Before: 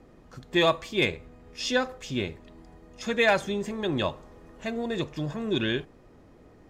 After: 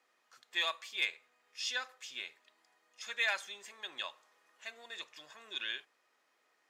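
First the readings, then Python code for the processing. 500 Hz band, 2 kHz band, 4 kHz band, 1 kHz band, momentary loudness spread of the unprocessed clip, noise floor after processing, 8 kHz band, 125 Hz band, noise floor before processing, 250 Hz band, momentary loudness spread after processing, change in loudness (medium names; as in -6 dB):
-23.5 dB, -7.0 dB, -5.5 dB, -13.5 dB, 13 LU, -76 dBFS, -5.5 dB, under -40 dB, -54 dBFS, -34.0 dB, 16 LU, -10.0 dB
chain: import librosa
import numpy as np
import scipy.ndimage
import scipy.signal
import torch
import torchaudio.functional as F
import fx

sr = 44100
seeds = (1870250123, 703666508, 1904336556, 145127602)

y = scipy.signal.sosfilt(scipy.signal.butter(2, 1500.0, 'highpass', fs=sr, output='sos'), x)
y = y * 10.0 ** (-5.5 / 20.0)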